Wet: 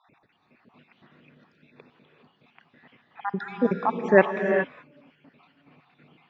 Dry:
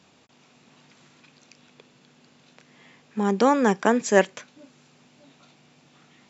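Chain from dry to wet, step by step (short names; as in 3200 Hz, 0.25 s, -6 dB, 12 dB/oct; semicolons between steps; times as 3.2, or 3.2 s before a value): random spectral dropouts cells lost 61%; LPF 2900 Hz 24 dB/oct; non-linear reverb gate 0.44 s rising, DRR 4.5 dB; gain +1.5 dB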